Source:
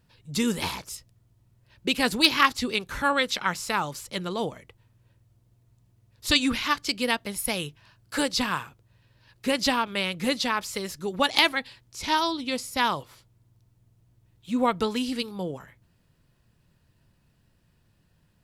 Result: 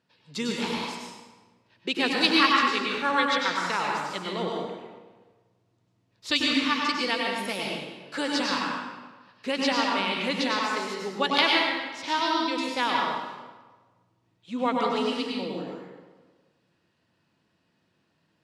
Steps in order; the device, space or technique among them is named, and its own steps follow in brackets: supermarket ceiling speaker (BPF 250–5600 Hz; reverb RT60 1.3 s, pre-delay 91 ms, DRR -2 dB); gain -3 dB

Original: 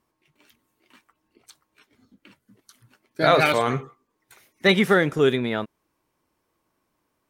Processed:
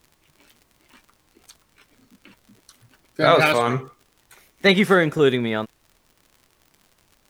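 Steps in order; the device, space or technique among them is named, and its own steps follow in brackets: vinyl LP (wow and flutter; crackle 77/s -42 dBFS; pink noise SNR 40 dB); gain +2 dB

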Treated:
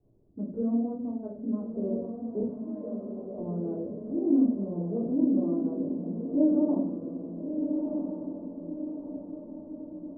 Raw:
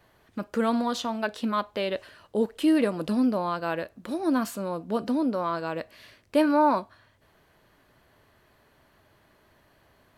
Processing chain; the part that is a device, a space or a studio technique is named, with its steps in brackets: 2.4–3.39 HPF 600 Hz 24 dB/oct; under water (LPF 490 Hz 24 dB/oct; bell 250 Hz +4 dB 0.43 oct); diffused feedback echo 1.349 s, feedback 50%, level -5 dB; shoebox room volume 370 m³, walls furnished, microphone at 3.4 m; gain -8 dB

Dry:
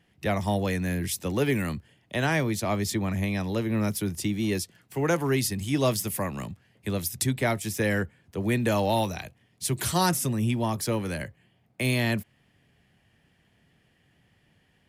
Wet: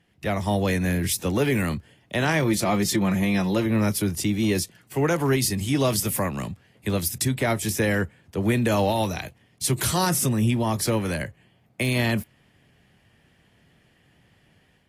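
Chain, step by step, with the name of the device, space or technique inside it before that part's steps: 2.42–3.66 comb 5.7 ms, depth 59%; low-bitrate web radio (AGC gain up to 4.5 dB; limiter -13 dBFS, peak gain reduction 5.5 dB; AAC 48 kbps 32000 Hz)

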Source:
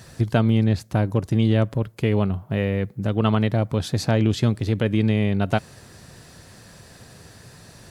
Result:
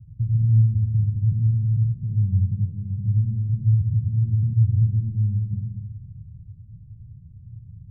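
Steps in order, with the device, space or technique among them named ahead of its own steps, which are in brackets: club heard from the street (limiter -16 dBFS, peak gain reduction 9.5 dB; LPF 130 Hz 24 dB/oct; reverb RT60 1.2 s, pre-delay 48 ms, DRR 0 dB); gain +4.5 dB

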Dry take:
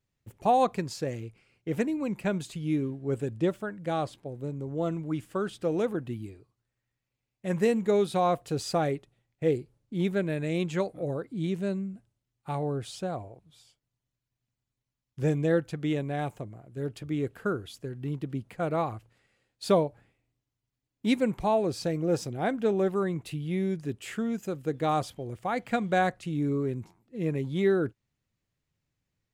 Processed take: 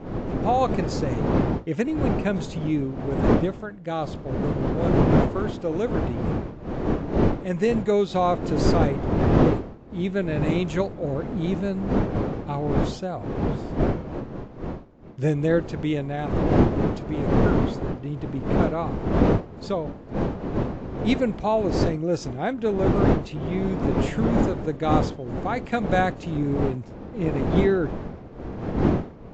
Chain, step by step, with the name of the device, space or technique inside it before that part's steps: smartphone video outdoors (wind noise 360 Hz -26 dBFS; AGC gain up to 8.5 dB; gain -4.5 dB; AAC 48 kbps 16000 Hz)

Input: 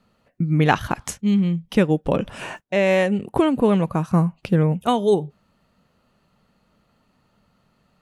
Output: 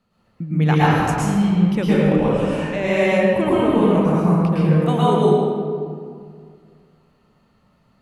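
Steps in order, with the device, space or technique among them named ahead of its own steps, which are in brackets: stairwell (reverb RT60 2.1 s, pre-delay 0.105 s, DRR -9 dB); gain -6.5 dB

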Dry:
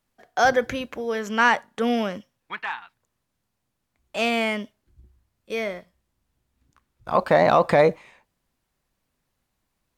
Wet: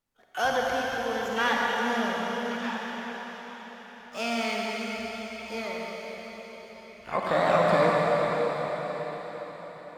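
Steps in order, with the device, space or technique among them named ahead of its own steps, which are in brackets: shimmer-style reverb (harmoniser +12 st -9 dB; reverb RT60 5.5 s, pre-delay 37 ms, DRR -3.5 dB); gain -9 dB

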